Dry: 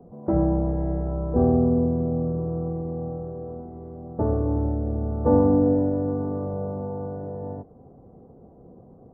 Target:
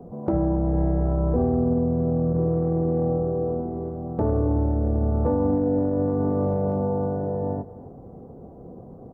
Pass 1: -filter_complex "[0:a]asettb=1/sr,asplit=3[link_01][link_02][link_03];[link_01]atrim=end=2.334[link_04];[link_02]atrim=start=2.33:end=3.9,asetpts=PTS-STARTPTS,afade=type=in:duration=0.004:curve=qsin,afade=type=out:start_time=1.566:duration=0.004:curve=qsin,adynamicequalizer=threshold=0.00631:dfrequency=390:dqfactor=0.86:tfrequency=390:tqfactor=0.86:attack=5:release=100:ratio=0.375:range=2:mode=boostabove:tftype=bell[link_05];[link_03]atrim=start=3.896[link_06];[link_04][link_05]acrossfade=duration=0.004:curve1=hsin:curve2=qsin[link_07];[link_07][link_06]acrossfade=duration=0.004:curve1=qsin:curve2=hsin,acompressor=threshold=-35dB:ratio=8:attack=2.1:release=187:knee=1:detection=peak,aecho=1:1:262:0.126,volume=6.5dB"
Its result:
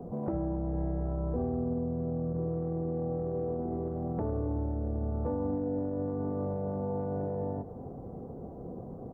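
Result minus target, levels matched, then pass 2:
downward compressor: peak gain reduction +10 dB
-filter_complex "[0:a]asettb=1/sr,asplit=3[link_01][link_02][link_03];[link_01]atrim=end=2.334[link_04];[link_02]atrim=start=2.33:end=3.9,asetpts=PTS-STARTPTS,afade=type=in:duration=0.004:curve=qsin,afade=type=out:start_time=1.566:duration=0.004:curve=qsin,adynamicequalizer=threshold=0.00631:dfrequency=390:dqfactor=0.86:tfrequency=390:tqfactor=0.86:attack=5:release=100:ratio=0.375:range=2:mode=boostabove:tftype=bell[link_05];[link_03]atrim=start=3.896[link_06];[link_04][link_05]acrossfade=duration=0.004:curve1=hsin:curve2=qsin[link_07];[link_07][link_06]acrossfade=duration=0.004:curve1=qsin:curve2=hsin,acompressor=threshold=-23.5dB:ratio=8:attack=2.1:release=187:knee=1:detection=peak,aecho=1:1:262:0.126,volume=6.5dB"

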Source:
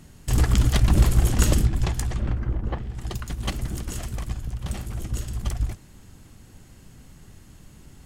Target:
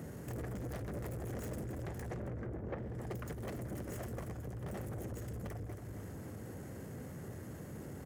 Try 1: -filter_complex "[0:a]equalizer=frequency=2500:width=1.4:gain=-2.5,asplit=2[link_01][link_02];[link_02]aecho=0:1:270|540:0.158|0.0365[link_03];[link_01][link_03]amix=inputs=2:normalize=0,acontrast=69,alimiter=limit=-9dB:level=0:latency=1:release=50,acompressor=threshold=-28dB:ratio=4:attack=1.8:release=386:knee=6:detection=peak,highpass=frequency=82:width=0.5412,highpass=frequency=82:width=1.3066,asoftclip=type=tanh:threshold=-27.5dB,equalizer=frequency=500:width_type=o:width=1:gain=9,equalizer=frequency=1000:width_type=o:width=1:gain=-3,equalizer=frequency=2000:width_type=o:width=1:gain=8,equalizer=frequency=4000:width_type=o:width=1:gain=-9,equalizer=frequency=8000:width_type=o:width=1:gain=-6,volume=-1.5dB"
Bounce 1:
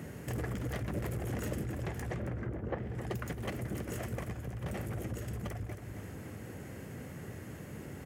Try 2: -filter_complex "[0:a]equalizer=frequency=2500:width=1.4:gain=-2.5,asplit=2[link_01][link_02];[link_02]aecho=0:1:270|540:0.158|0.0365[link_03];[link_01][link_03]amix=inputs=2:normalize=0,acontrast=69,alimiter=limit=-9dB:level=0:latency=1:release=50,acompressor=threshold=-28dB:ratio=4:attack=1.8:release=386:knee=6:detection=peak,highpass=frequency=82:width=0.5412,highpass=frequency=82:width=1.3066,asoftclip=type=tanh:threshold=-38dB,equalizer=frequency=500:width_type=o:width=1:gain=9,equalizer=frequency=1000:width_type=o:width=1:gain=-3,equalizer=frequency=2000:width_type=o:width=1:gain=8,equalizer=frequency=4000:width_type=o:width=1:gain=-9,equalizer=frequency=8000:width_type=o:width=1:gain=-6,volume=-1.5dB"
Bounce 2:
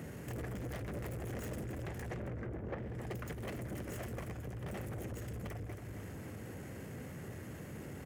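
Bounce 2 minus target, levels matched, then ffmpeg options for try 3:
2,000 Hz band +3.5 dB
-filter_complex "[0:a]equalizer=frequency=2500:width=1.4:gain=-11,asplit=2[link_01][link_02];[link_02]aecho=0:1:270|540:0.158|0.0365[link_03];[link_01][link_03]amix=inputs=2:normalize=0,acontrast=69,alimiter=limit=-9dB:level=0:latency=1:release=50,acompressor=threshold=-28dB:ratio=4:attack=1.8:release=386:knee=6:detection=peak,highpass=frequency=82:width=0.5412,highpass=frequency=82:width=1.3066,asoftclip=type=tanh:threshold=-38dB,equalizer=frequency=500:width_type=o:width=1:gain=9,equalizer=frequency=1000:width_type=o:width=1:gain=-3,equalizer=frequency=2000:width_type=o:width=1:gain=8,equalizer=frequency=4000:width_type=o:width=1:gain=-9,equalizer=frequency=8000:width_type=o:width=1:gain=-6,volume=-1.5dB"

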